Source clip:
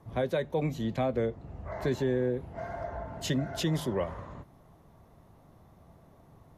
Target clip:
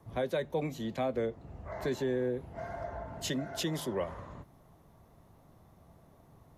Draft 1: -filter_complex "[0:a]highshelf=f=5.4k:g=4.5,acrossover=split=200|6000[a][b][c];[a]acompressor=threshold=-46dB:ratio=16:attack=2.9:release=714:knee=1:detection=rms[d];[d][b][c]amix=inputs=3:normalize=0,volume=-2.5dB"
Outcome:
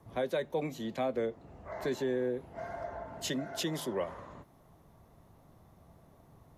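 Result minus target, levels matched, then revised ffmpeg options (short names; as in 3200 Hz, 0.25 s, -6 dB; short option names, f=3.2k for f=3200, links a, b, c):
compressor: peak gain reduction +8 dB
-filter_complex "[0:a]highshelf=f=5.4k:g=4.5,acrossover=split=200|6000[a][b][c];[a]acompressor=threshold=-37.5dB:ratio=16:attack=2.9:release=714:knee=1:detection=rms[d];[d][b][c]amix=inputs=3:normalize=0,volume=-2.5dB"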